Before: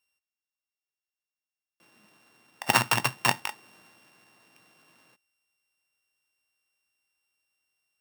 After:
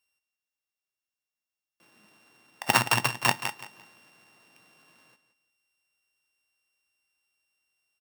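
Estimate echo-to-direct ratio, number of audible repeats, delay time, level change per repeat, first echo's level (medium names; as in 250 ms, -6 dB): -12.5 dB, 2, 172 ms, -12.5 dB, -13.0 dB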